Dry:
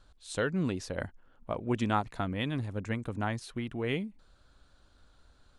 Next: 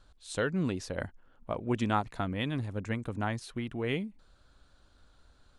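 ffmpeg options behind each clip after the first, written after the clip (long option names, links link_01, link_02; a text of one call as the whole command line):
ffmpeg -i in.wav -af anull out.wav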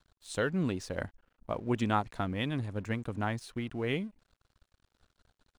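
ffmpeg -i in.wav -af "aeval=exprs='sgn(val(0))*max(abs(val(0))-0.00126,0)':channel_layout=same" out.wav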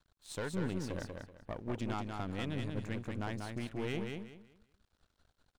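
ffmpeg -i in.wav -filter_complex "[0:a]alimiter=limit=-22dB:level=0:latency=1:release=249,aeval=exprs='(tanh(31.6*val(0)+0.65)-tanh(0.65))/31.6':channel_layout=same,asplit=2[link_01][link_02];[link_02]aecho=0:1:190|380|570|760:0.596|0.155|0.0403|0.0105[link_03];[link_01][link_03]amix=inputs=2:normalize=0,volume=-1dB" out.wav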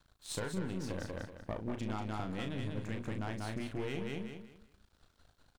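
ffmpeg -i in.wav -filter_complex "[0:a]acompressor=threshold=-40dB:ratio=6,asplit=2[link_01][link_02];[link_02]adelay=37,volume=-7dB[link_03];[link_01][link_03]amix=inputs=2:normalize=0,volume=5.5dB" out.wav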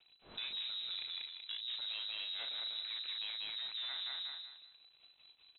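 ffmpeg -i in.wav -af "asoftclip=type=tanh:threshold=-39dB,lowpass=frequency=3400:width_type=q:width=0.5098,lowpass=frequency=3400:width_type=q:width=0.6013,lowpass=frequency=3400:width_type=q:width=0.9,lowpass=frequency=3400:width_type=q:width=2.563,afreqshift=-4000,volume=1.5dB" out.wav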